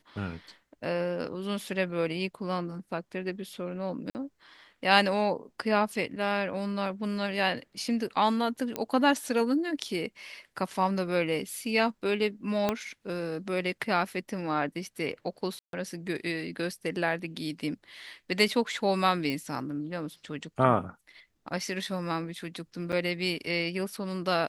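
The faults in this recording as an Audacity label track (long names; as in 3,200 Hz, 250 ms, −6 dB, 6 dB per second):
4.100000	4.150000	drop-out 49 ms
8.760000	8.760000	click −15 dBFS
12.690000	12.690000	click −12 dBFS
15.590000	15.730000	drop-out 142 ms
19.300000	19.300000	click −19 dBFS
22.920000	22.930000	drop-out 7 ms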